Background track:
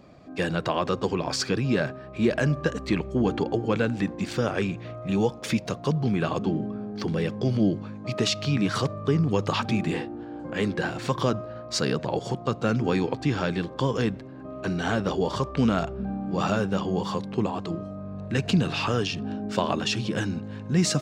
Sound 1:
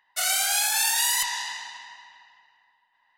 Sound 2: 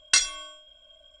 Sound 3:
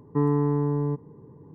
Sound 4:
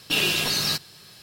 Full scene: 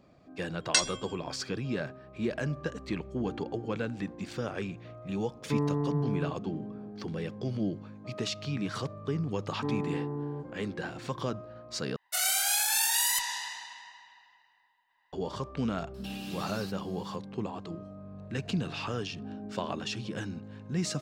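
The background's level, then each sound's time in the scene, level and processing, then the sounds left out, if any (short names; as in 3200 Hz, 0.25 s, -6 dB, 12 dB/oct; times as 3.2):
background track -9 dB
0.61 add 2 -4 dB + rotary speaker horn 5.5 Hz
5.35 add 3 -6.5 dB
9.47 add 3 -9.5 dB + HPF 130 Hz
11.96 replace with 1 -5 dB + high shelf 11000 Hz +5 dB
15.94 add 4 -14 dB + compressor, threshold -28 dBFS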